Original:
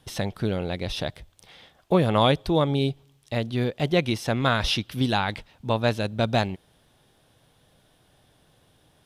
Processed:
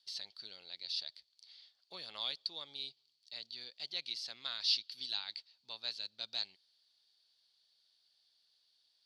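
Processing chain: band-pass 4500 Hz, Q 16; gain +9 dB

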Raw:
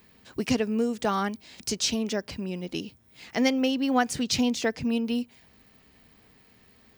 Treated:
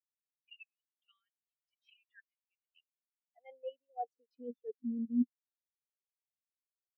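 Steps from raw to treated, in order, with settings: high-pass sweep 2700 Hz -> 300 Hz, 1.44–4.86; level quantiser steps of 9 dB; dynamic EQ 2600 Hz, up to +4 dB, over -43 dBFS, Q 1.1; reverse; compressor 16:1, threshold -36 dBFS, peak gain reduction 21 dB; reverse; spectral expander 4:1; gain +2.5 dB

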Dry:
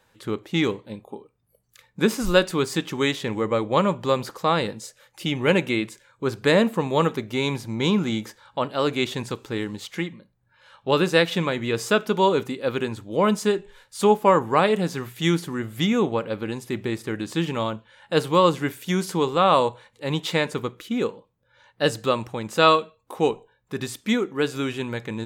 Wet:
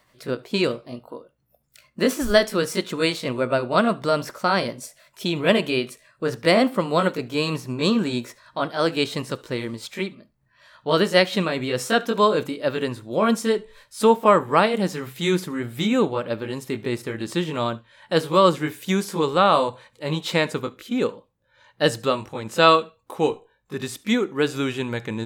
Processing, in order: gliding pitch shift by +3 st ending unshifted; on a send: reverb, pre-delay 68 ms, DRR 23.5 dB; on the sum: gain +2 dB

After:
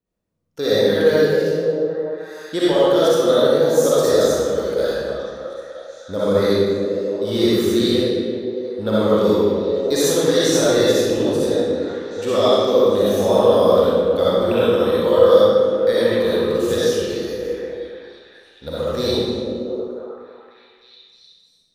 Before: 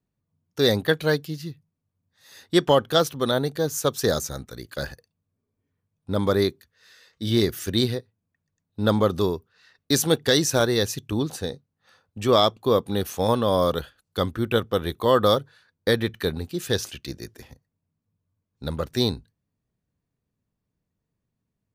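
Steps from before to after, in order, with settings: thirty-one-band EQ 125 Hz -10 dB, 500 Hz +10 dB, 12500 Hz -3 dB; limiter -9.5 dBFS, peak gain reduction 8 dB; delay with a stepping band-pass 0.307 s, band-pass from 260 Hz, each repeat 0.7 oct, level -2.5 dB; digital reverb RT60 1.6 s, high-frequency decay 0.85×, pre-delay 20 ms, DRR -9 dB; gain -4.5 dB

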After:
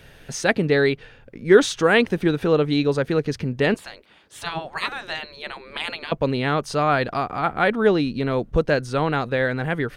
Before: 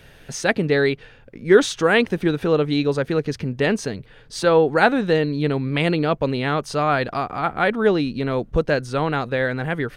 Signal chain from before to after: 3.74–6.12 spectral gate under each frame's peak -15 dB weak

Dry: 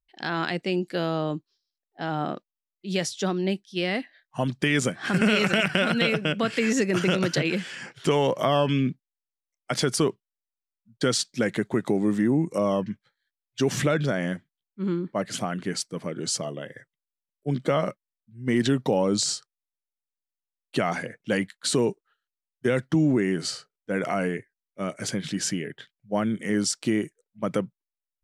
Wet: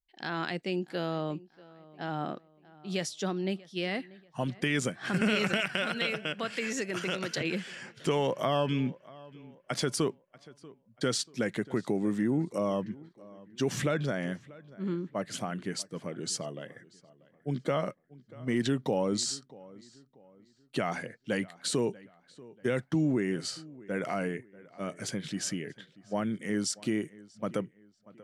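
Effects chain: 5.57–7.41 low shelf 370 Hz -9.5 dB; darkening echo 0.637 s, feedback 38%, low-pass 3500 Hz, level -21 dB; gain -6 dB

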